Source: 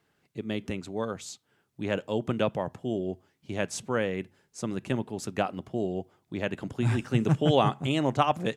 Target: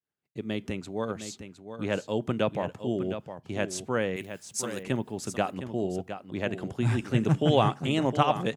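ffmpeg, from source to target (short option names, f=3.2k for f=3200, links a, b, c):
-filter_complex "[0:a]asettb=1/sr,asplit=3[a][b][c];[a]atrim=end=4.164[d];[b]atrim=start=4.16:end=4.83,asetpts=PTS-STARTPTS,afade=t=in:d=0.004:c=qsin,afade=t=out:st=0.666:d=0.004:c=qsin,aemphasis=mode=production:type=riaa[e];[c]atrim=start=4.826[f];[d][e]acrossfade=d=0.004:c1=hsin:c2=qsin[g];[g][f]acrossfade=d=0.004:c1=qsin:c2=hsin,agate=range=-33dB:threshold=-57dB:ratio=3:detection=peak,asplit=2[h][i];[i]aecho=0:1:712:0.316[j];[h][j]amix=inputs=2:normalize=0"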